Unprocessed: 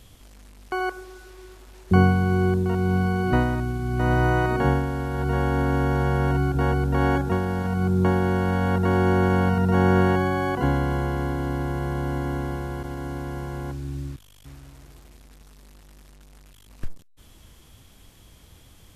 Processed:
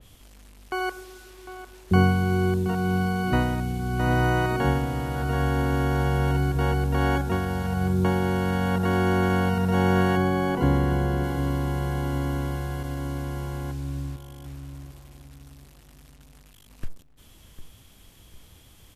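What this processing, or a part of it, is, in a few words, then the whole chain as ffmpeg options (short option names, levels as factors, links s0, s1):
presence and air boost: -filter_complex "[0:a]asettb=1/sr,asplit=3[s0][s1][s2];[s0]atrim=end=10.174[s3];[s1]atrim=start=10.17:end=11.24,asetpts=PTS-STARTPTS,afade=t=in:d=0.004:c=qsin,afade=t=out:st=1.066:d=0.004:c=qsin,tiltshelf=f=810:g=3.5[s4];[s2]atrim=start=11.236[s5];[s3][s4]acrossfade=d=0.004:c1=hsin:c2=qsin[s6];[s6][s5]acrossfade=d=0.004:c1=qsin:c2=hsin,equalizer=f=2900:t=o:w=0.77:g=2.5,highshelf=f=11000:g=6,asplit=2[s7][s8];[s8]adelay=752,lowpass=f=1900:p=1,volume=0.251,asplit=2[s9][s10];[s10]adelay=752,lowpass=f=1900:p=1,volume=0.4,asplit=2[s11][s12];[s12]adelay=752,lowpass=f=1900:p=1,volume=0.4,asplit=2[s13][s14];[s14]adelay=752,lowpass=f=1900:p=1,volume=0.4[s15];[s7][s9][s11][s13][s15]amix=inputs=5:normalize=0,adynamicequalizer=threshold=0.00708:dfrequency=2500:dqfactor=0.7:tfrequency=2500:tqfactor=0.7:attack=5:release=100:ratio=0.375:range=2:mode=boostabove:tftype=highshelf,volume=0.794"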